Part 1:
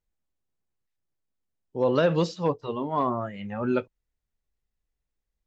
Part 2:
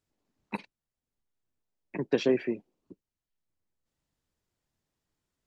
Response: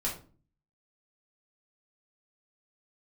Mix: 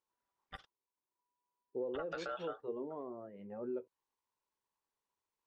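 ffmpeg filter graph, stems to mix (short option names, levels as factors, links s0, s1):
-filter_complex "[0:a]acompressor=threshold=0.0316:ratio=12,bandpass=f=410:t=q:w=2.7:csg=0,volume=0.841[s0];[1:a]equalizer=f=270:w=3.2:g=-11.5,aeval=exprs='val(0)*sin(2*PI*980*n/s)':c=same,volume=0.501[s1];[s0][s1]amix=inputs=2:normalize=0,alimiter=level_in=2:limit=0.0631:level=0:latency=1:release=153,volume=0.501"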